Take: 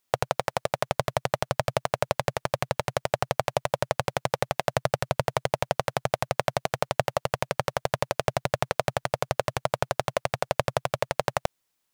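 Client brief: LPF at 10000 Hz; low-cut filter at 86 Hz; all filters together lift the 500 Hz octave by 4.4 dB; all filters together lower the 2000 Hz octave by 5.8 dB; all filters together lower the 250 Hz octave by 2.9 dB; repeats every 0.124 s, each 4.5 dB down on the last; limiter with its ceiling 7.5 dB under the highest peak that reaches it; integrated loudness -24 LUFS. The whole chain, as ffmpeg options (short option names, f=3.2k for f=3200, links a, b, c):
-af "highpass=86,lowpass=10k,equalizer=f=250:t=o:g=-8,equalizer=f=500:t=o:g=7.5,equalizer=f=2k:t=o:g=-8,alimiter=limit=-12.5dB:level=0:latency=1,aecho=1:1:124|248|372|496|620|744|868|992|1116:0.596|0.357|0.214|0.129|0.0772|0.0463|0.0278|0.0167|0.01,volume=5.5dB"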